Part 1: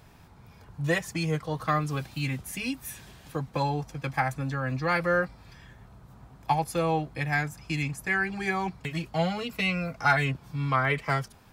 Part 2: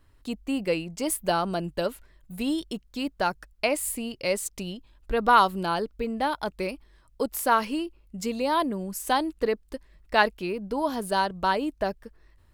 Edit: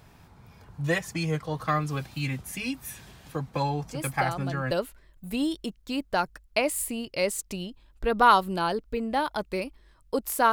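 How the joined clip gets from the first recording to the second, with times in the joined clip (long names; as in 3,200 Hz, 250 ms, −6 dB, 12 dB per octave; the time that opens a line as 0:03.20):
part 1
0:03.85: mix in part 2 from 0:00.92 0.86 s −8 dB
0:04.71: continue with part 2 from 0:01.78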